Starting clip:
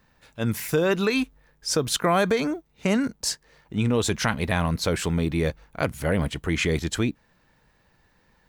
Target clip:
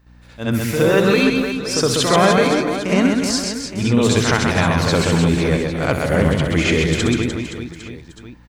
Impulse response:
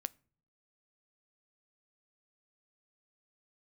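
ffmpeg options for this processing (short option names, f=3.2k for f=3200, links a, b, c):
-filter_complex "[0:a]aecho=1:1:130|299|518.7|804.3|1176:0.631|0.398|0.251|0.158|0.1,aeval=exprs='val(0)+0.00224*(sin(2*PI*60*n/s)+sin(2*PI*2*60*n/s)/2+sin(2*PI*3*60*n/s)/3+sin(2*PI*4*60*n/s)/4+sin(2*PI*5*60*n/s)/5)':c=same,asplit=2[a][b];[1:a]atrim=start_sample=2205,lowpass=7.4k,adelay=66[c];[b][c]afir=irnorm=-1:irlink=0,volume=8dB[d];[a][d]amix=inputs=2:normalize=0,volume=-1dB"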